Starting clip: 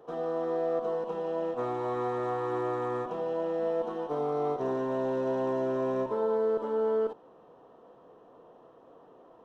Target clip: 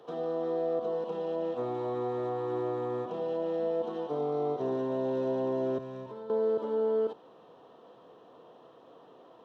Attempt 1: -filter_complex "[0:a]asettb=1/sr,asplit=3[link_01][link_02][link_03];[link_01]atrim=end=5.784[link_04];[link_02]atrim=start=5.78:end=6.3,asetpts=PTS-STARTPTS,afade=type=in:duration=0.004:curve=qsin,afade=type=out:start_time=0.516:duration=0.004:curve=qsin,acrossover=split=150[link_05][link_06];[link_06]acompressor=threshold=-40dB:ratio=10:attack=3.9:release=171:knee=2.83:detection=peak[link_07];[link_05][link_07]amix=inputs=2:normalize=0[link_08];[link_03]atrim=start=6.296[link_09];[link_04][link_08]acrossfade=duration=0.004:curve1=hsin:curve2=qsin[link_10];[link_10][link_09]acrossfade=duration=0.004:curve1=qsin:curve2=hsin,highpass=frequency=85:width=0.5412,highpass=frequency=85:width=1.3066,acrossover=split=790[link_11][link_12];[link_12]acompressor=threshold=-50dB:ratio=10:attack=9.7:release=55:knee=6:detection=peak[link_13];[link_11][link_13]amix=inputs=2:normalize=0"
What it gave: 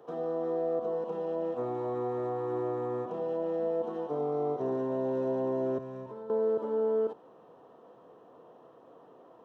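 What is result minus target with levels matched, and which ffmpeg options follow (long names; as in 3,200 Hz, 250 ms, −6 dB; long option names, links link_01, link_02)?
4,000 Hz band −8.5 dB
-filter_complex "[0:a]asettb=1/sr,asplit=3[link_01][link_02][link_03];[link_01]atrim=end=5.784[link_04];[link_02]atrim=start=5.78:end=6.3,asetpts=PTS-STARTPTS,afade=type=in:duration=0.004:curve=qsin,afade=type=out:start_time=0.516:duration=0.004:curve=qsin,acrossover=split=150[link_05][link_06];[link_06]acompressor=threshold=-40dB:ratio=10:attack=3.9:release=171:knee=2.83:detection=peak[link_07];[link_05][link_07]amix=inputs=2:normalize=0[link_08];[link_03]atrim=start=6.296[link_09];[link_04][link_08]acrossfade=duration=0.004:curve1=hsin:curve2=qsin[link_10];[link_10][link_09]acrossfade=duration=0.004:curve1=qsin:curve2=hsin,highpass=frequency=85:width=0.5412,highpass=frequency=85:width=1.3066,equalizer=frequency=3700:width_type=o:width=1.2:gain=11,acrossover=split=790[link_11][link_12];[link_12]acompressor=threshold=-50dB:ratio=10:attack=9.7:release=55:knee=6:detection=peak[link_13];[link_11][link_13]amix=inputs=2:normalize=0"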